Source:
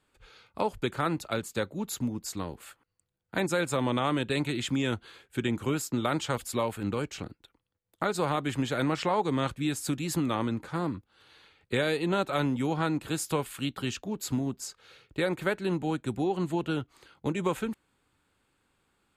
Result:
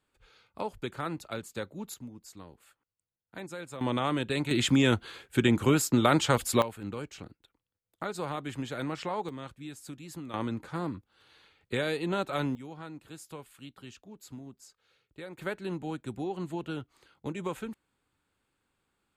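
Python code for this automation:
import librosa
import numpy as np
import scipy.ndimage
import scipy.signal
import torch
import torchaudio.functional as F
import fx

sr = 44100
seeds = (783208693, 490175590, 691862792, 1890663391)

y = fx.gain(x, sr, db=fx.steps((0.0, -6.0), (1.94, -13.0), (3.81, -1.5), (4.51, 5.5), (6.62, -6.5), (9.29, -13.0), (10.34, -3.0), (12.55, -15.0), (15.38, -6.0)))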